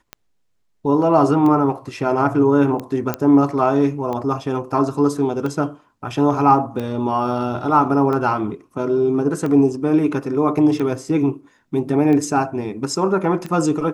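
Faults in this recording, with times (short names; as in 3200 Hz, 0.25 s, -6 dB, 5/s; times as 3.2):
tick 45 rpm -15 dBFS
3.14 pop -6 dBFS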